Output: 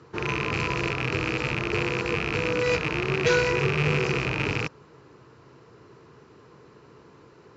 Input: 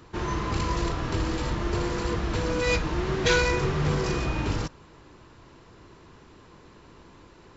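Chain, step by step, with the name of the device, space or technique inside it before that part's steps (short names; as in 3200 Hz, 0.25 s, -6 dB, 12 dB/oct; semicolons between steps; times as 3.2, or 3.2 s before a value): car door speaker with a rattle (rattling part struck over -31 dBFS, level -12 dBFS; speaker cabinet 100–6900 Hz, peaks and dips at 130 Hz +8 dB, 440 Hz +9 dB, 1300 Hz +4 dB, 3500 Hz -5 dB); gain -2.5 dB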